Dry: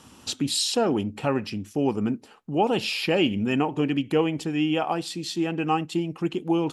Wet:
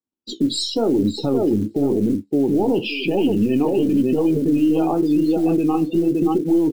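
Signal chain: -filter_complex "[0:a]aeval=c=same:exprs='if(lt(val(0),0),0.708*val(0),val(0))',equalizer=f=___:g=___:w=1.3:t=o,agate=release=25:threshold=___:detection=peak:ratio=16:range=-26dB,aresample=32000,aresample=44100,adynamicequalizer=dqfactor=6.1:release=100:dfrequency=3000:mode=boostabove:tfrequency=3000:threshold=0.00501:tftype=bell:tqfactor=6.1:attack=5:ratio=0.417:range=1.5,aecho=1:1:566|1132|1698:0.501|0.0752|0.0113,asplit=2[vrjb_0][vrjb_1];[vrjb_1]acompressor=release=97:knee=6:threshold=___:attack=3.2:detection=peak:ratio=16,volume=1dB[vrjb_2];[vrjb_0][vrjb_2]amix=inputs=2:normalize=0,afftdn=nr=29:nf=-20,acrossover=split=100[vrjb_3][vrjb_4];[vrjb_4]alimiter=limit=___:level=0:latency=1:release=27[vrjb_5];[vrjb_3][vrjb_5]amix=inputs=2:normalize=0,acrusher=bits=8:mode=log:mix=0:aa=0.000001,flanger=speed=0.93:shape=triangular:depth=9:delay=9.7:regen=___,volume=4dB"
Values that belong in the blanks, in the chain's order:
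330, 13, -42dB, -21dB, -12dB, -55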